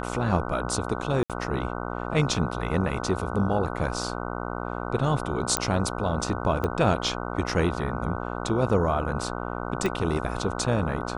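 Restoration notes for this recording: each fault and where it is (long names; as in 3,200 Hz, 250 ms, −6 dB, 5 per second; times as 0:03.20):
mains buzz 60 Hz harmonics 25 −32 dBFS
0:01.23–0:01.30: drop-out 67 ms
0:05.57: click −5 dBFS
0:06.64: click −15 dBFS
0:09.86: click −14 dBFS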